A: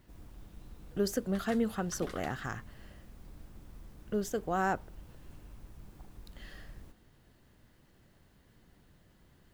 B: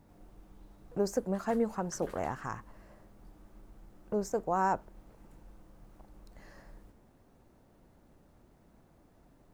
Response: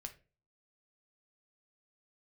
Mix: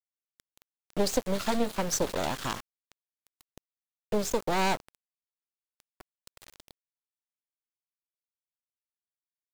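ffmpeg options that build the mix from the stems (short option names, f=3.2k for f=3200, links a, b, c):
-filter_complex "[0:a]bandreject=f=1.9k:w=27,aeval=exprs='abs(val(0))':c=same,volume=0dB[a];[1:a]acompressor=threshold=-31dB:ratio=6,adelay=2.9,volume=3dB[b];[a][b]amix=inputs=2:normalize=0,equalizer=f=500:t=o:w=1:g=4,equalizer=f=4k:t=o:w=1:g=11,equalizer=f=8k:t=o:w=1:g=7,aeval=exprs='val(0)*gte(abs(val(0)),0.0168)':c=same"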